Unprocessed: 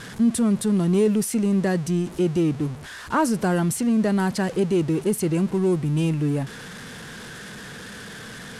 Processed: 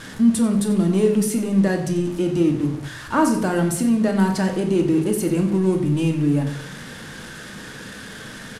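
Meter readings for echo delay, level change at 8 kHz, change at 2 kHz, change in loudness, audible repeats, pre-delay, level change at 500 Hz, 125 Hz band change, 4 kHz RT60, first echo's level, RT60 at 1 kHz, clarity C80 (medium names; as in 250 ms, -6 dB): 91 ms, +1.5 dB, +2.0 dB, +2.5 dB, 1, 3 ms, +2.0 dB, +1.5 dB, 0.55 s, -14.0 dB, 0.65 s, 10.5 dB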